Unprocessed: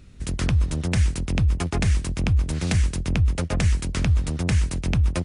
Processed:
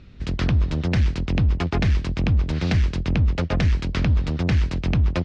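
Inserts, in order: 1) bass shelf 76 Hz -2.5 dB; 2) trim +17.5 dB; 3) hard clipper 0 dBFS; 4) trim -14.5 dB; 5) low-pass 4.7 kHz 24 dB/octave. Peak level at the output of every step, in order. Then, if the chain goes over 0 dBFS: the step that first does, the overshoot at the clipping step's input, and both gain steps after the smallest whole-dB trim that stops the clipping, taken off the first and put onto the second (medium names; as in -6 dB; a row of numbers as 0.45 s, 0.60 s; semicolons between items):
-11.0 dBFS, +6.5 dBFS, 0.0 dBFS, -14.5 dBFS, -12.5 dBFS; step 2, 6.5 dB; step 2 +10.5 dB, step 4 -7.5 dB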